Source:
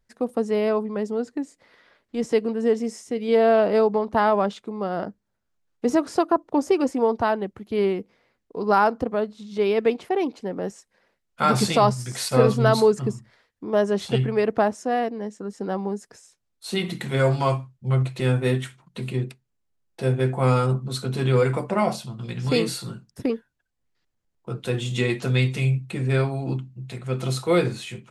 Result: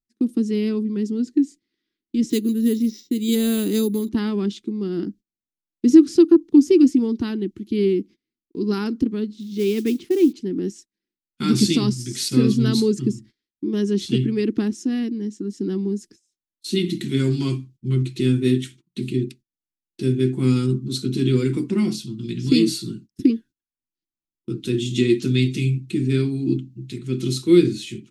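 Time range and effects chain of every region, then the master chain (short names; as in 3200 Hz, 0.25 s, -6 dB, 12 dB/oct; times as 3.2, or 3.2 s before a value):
2.3–4.09 bell 3800 Hz +14 dB 0.25 oct + careless resampling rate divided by 4×, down filtered, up hold
9.35–10.33 high shelf 5300 Hz -6 dB + modulation noise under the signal 24 dB
whole clip: gate -45 dBFS, range -21 dB; EQ curve 130 Hz 0 dB, 340 Hz +13 dB, 580 Hz -27 dB, 3300 Hz +3 dB, 5900 Hz +5 dB, 8500 Hz +1 dB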